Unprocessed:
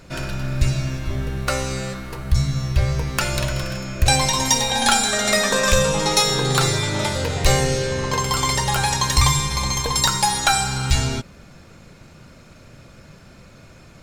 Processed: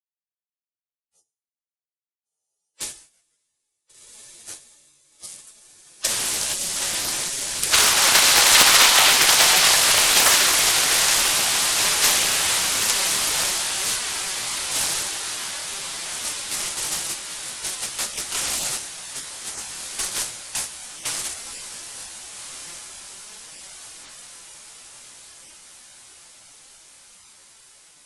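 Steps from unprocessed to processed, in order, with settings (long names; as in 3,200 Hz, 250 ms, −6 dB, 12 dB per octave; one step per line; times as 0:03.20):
source passing by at 0:04.39, 17 m/s, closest 1.2 metres
inverse Chebyshev high-pass filter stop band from 400 Hz, stop band 70 dB
log-companded quantiser 4 bits
gate on every frequency bin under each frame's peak −15 dB weak
high-shelf EQ 11,000 Hz +10.5 dB
downward compressor 3 to 1, threshold −41 dBFS, peak gain reduction 14.5 dB
wrong playback speed 15 ips tape played at 7.5 ips
feedback delay with all-pass diffusion 1,473 ms, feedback 64%, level −8.5 dB
coupled-rooms reverb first 0.45 s, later 3.3 s, from −27 dB, DRR 12.5 dB
granular cloud 187 ms, spray 17 ms, pitch spread up and down by 0 semitones
boost into a limiter +33 dB
highs frequency-modulated by the lows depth 0.77 ms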